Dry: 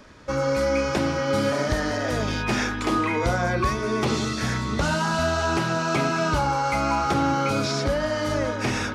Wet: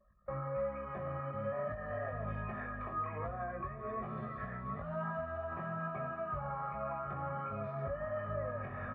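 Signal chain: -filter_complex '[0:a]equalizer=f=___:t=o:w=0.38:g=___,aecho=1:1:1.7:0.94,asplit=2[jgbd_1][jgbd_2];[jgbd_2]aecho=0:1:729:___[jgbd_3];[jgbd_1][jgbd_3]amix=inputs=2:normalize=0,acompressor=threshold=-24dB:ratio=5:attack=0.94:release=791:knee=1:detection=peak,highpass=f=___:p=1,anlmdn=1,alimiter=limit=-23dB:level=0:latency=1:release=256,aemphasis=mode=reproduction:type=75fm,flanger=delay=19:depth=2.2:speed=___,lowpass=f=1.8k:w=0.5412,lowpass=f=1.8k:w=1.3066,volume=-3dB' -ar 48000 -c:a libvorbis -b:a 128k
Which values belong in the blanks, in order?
460, -11, 0.168, 120, 1.2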